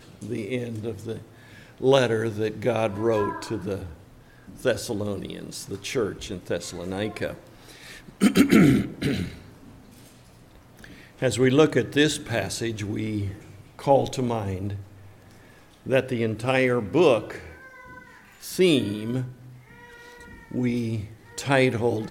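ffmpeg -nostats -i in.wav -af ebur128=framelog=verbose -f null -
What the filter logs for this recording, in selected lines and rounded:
Integrated loudness:
  I:         -24.6 LUFS
  Threshold: -36.2 LUFS
Loudness range:
  LRA:         6.1 LU
  Threshold: -46.1 LUFS
  LRA low:   -30.1 LUFS
  LRA high:  -23.9 LUFS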